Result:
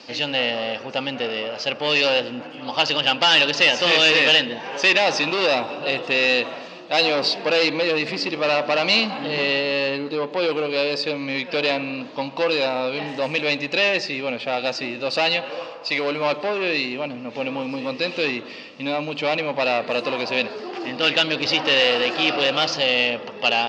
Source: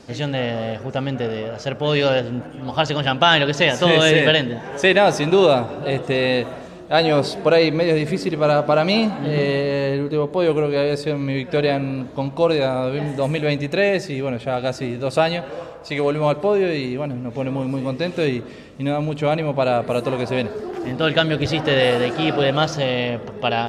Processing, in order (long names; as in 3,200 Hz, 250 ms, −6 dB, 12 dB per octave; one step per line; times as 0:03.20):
soft clipping −16.5 dBFS, distortion −10 dB
loudspeaker in its box 370–5,600 Hz, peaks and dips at 400 Hz −8 dB, 660 Hz −5 dB, 1,500 Hz −5 dB, 2,700 Hz +8 dB, 4,700 Hz +8 dB
level +4.5 dB